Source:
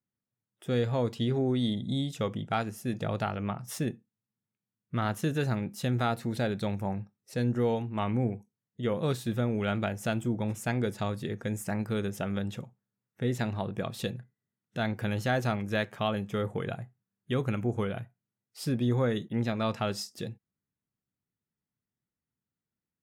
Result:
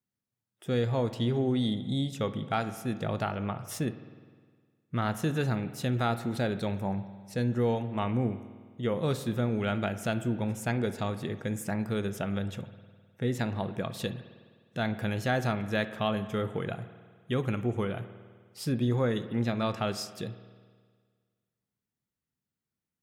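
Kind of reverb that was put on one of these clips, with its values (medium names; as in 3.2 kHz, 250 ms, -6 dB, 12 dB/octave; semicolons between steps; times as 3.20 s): spring tank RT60 1.7 s, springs 51 ms, chirp 25 ms, DRR 12 dB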